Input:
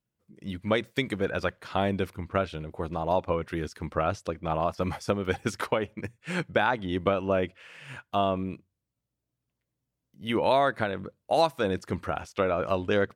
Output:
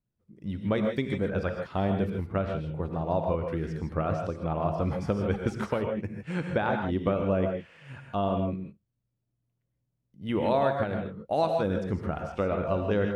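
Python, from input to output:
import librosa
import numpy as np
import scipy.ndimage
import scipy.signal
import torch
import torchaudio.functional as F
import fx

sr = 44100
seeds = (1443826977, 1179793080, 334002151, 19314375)

y = fx.tilt_eq(x, sr, slope=-2.5)
y = fx.rev_gated(y, sr, seeds[0], gate_ms=180, shape='rising', drr_db=3.5)
y = F.gain(torch.from_numpy(y), -5.0).numpy()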